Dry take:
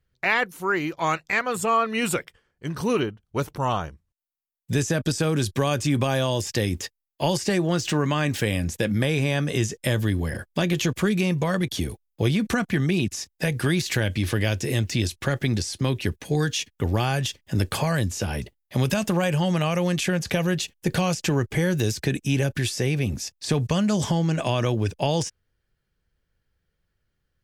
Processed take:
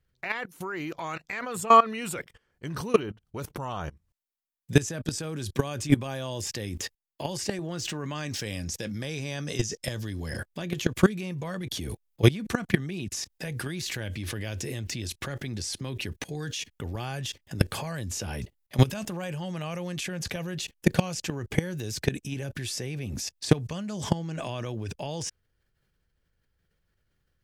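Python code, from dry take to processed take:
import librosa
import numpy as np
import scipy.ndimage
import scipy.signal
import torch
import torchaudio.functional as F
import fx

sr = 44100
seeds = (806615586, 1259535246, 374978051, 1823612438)

y = fx.peak_eq(x, sr, hz=5400.0, db=12.0, octaves=0.78, at=(8.15, 10.39))
y = fx.level_steps(y, sr, step_db=20)
y = F.gain(torch.from_numpy(y), 6.5).numpy()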